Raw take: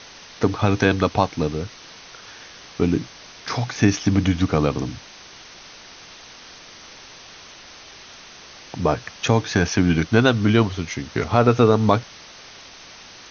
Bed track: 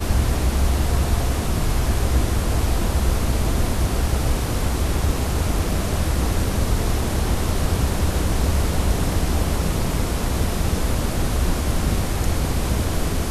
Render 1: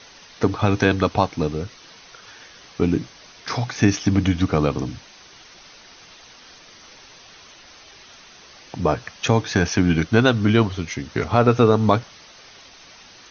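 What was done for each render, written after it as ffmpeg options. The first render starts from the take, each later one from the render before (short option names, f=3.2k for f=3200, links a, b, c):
-af "afftdn=nr=6:nf=-43"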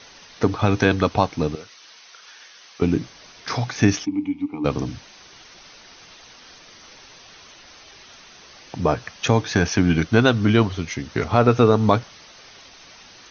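-filter_complex "[0:a]asettb=1/sr,asplit=3[a][b][c];[a]atrim=end=1.554[d];[b]atrim=start=1.55:end=2.82,asetpts=PTS-STARTPTS,afade=t=in:d=0.004:c=qsin,afade=t=out:st=1.266:d=0.004:c=qsin,highpass=f=1.3k:p=1[e];[c]atrim=start=2.816[f];[d][e]acrossfade=d=0.004:c1=hsin:c2=qsin[g];[g][f]acrossfade=d=0.004:c1=qsin:c2=hsin,asplit=3[h][i][j];[h]afade=t=out:st=4.04:d=0.02[k];[i]asplit=3[l][m][n];[l]bandpass=f=300:t=q:w=8,volume=0dB[o];[m]bandpass=f=870:t=q:w=8,volume=-6dB[p];[n]bandpass=f=2.24k:t=q:w=8,volume=-9dB[q];[o][p][q]amix=inputs=3:normalize=0,afade=t=in:st=4.04:d=0.02,afade=t=out:st=4.64:d=0.02[r];[j]afade=t=in:st=4.64:d=0.02[s];[k][r][s]amix=inputs=3:normalize=0"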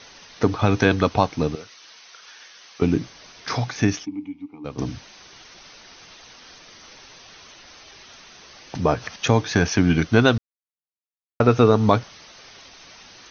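-filter_complex "[0:a]asettb=1/sr,asplit=3[a][b][c];[a]atrim=end=8.754[d];[b]atrim=start=8.75:end=9.16,asetpts=PTS-STARTPTS,afade=t=in:d=0.004:c=qsin,afade=t=out:st=0.406:d=0.004:c=qsin,acompressor=mode=upward:threshold=-25dB:ratio=2.5:attack=3.2:release=140:knee=2.83:detection=peak[e];[c]atrim=start=9.156[f];[d][e]acrossfade=d=0.004:c1=hsin:c2=qsin[g];[g][f]acrossfade=d=0.004:c1=qsin:c2=hsin,asplit=4[h][i][j][k];[h]atrim=end=4.78,asetpts=PTS-STARTPTS,afade=t=out:st=3.59:d=1.19:c=qua:silence=0.251189[l];[i]atrim=start=4.78:end=10.38,asetpts=PTS-STARTPTS,afade=t=in:d=0.004:c=hsin:silence=0.251189,afade=t=out:st=5.596:d=0.004:c=hsin[m];[j]atrim=start=10.38:end=11.4,asetpts=PTS-STARTPTS,volume=0[n];[k]atrim=start=11.4,asetpts=PTS-STARTPTS,afade=t=in:d=0.004:c=hsin[o];[l][m][n][o]concat=n=4:v=0:a=1"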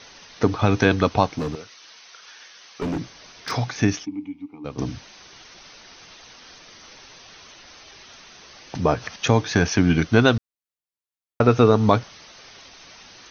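-filter_complex "[0:a]asettb=1/sr,asplit=3[a][b][c];[a]atrim=end=1.384[d];[b]atrim=start=1.38:end=3.52,asetpts=PTS-STARTPTS,afade=t=in:d=0.004:c=qsin,afade=t=out:st=2.136:d=0.004:c=qsin,asoftclip=type=hard:threshold=-22.5dB[e];[c]atrim=start=3.516[f];[d][e]acrossfade=d=0.004:c1=hsin:c2=qsin[g];[g][f]acrossfade=d=0.004:c1=qsin:c2=hsin"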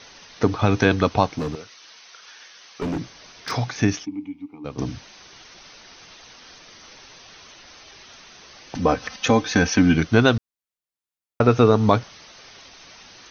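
-filter_complex "[0:a]asettb=1/sr,asplit=3[a][b][c];[a]atrim=end=8.754[d];[b]atrim=start=8.75:end=9.94,asetpts=PTS-STARTPTS,afade=t=in:d=0.004:c=qsin,afade=t=out:st=1.186:d=0.004:c=qsin,aecho=1:1:3.9:0.63,atrim=end_sample=52479[e];[c]atrim=start=9.936[f];[d][e]acrossfade=d=0.004:c1=hsin:c2=qsin[g];[g][f]acrossfade=d=0.004:c1=qsin:c2=hsin"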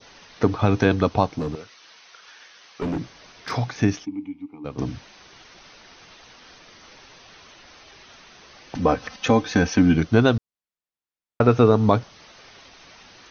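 -af "lowpass=f=3.6k:p=1,adynamicequalizer=threshold=0.0141:dfrequency=1900:dqfactor=0.81:tfrequency=1900:tqfactor=0.81:attack=5:release=100:ratio=0.375:range=2.5:mode=cutabove:tftype=bell"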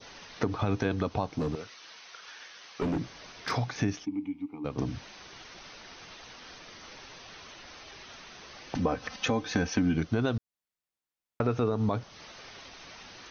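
-af "alimiter=limit=-9dB:level=0:latency=1:release=66,acompressor=threshold=-30dB:ratio=2"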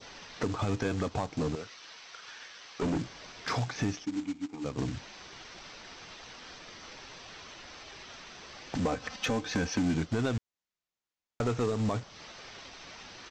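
-af "aresample=16000,acrusher=bits=3:mode=log:mix=0:aa=0.000001,aresample=44100,asoftclip=type=tanh:threshold=-21.5dB"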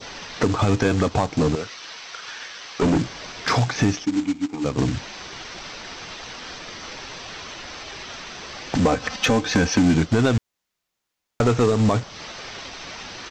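-af "volume=11.5dB"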